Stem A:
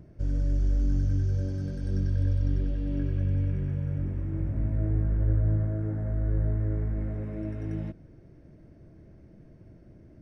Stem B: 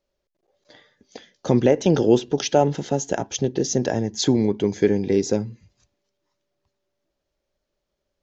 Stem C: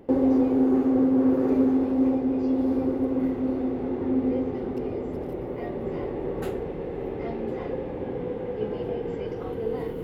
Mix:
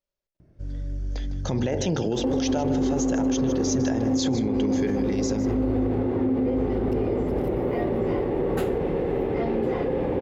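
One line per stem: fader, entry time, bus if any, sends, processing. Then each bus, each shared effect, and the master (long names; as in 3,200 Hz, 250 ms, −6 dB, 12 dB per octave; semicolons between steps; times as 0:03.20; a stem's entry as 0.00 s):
−5.0 dB, 0.40 s, no send, no echo send, no processing
+1.5 dB, 0.00 s, no send, echo send −14 dB, hum removal 48.76 Hz, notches 19; noise gate −45 dBFS, range −12 dB; parametric band 390 Hz −5.5 dB 1.4 octaves
0.0 dB, 2.15 s, no send, no echo send, envelope flattener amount 50%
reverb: not used
echo: single-tap delay 155 ms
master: brickwall limiter −16 dBFS, peak gain reduction 11 dB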